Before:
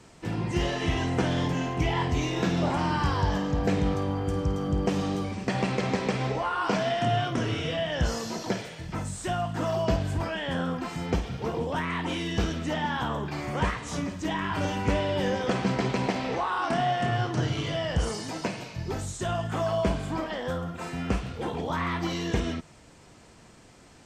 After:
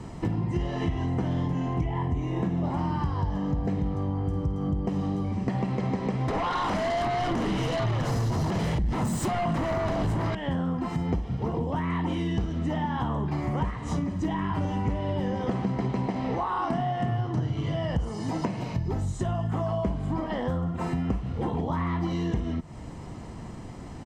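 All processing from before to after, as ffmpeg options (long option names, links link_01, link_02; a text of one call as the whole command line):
ffmpeg -i in.wav -filter_complex "[0:a]asettb=1/sr,asplit=3[link_01][link_02][link_03];[link_01]atrim=end=1.844[link_04];[link_02]atrim=start=1.84:end=2.64,asetpts=PTS-STARTPTS,afade=type=in:duration=0.004:curve=qsin,afade=type=out:start_time=0.796:duration=0.004:curve=qsin,equalizer=frequency=4600:width=1.3:gain=-9,bandreject=frequency=1400:width=11[link_05];[link_03]atrim=start=2.636[link_06];[link_04][link_05]acrossfade=duration=0.004:curve1=hsin:curve2=qsin[link_07];[link_07][link_06]acrossfade=duration=0.004:curve1=qsin:curve2=hsin,asettb=1/sr,asplit=3[link_08][link_09][link_10];[link_08]atrim=end=6.284[link_11];[link_09]atrim=start=6.28:end=10.35,asetpts=PTS-STARTPTS,afade=type=in:duration=0.004:curve=qsin,afade=type=out:start_time=4.066:duration=0.004:curve=qsin,acrossover=split=190[link_12][link_13];[link_12]adelay=770[link_14];[link_14][link_13]amix=inputs=2:normalize=0,atrim=end_sample=179487,acompressor=threshold=-34dB:ratio=8:attack=3.2:release=140:knee=1:detection=peak,aeval=exprs='0.0891*sin(PI/2*6.31*val(0)/0.0891)':channel_layout=same[link_15];[link_10]atrim=start=10.346[link_16];[link_11][link_15]acrossfade=duration=0.004:curve1=hsin:curve2=qsin[link_17];[link_17][link_16]acrossfade=duration=0.004:curve1=qsin:curve2=hsin,tiltshelf=frequency=1200:gain=7.5,aecho=1:1:1:0.35,acompressor=threshold=-33dB:ratio=6,volume=7dB" out.wav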